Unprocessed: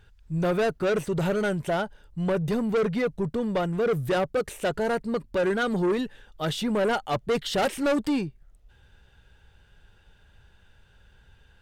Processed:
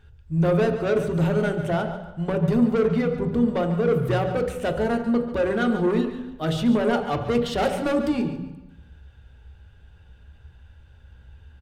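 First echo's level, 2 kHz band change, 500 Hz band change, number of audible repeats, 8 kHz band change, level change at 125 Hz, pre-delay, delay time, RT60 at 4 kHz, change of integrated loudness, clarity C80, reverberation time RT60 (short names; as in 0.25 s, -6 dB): -12.5 dB, 0.0 dB, +2.5 dB, 2, -4.0 dB, +6.0 dB, 3 ms, 0.142 s, 1.0 s, +3.5 dB, 9.0 dB, 1.0 s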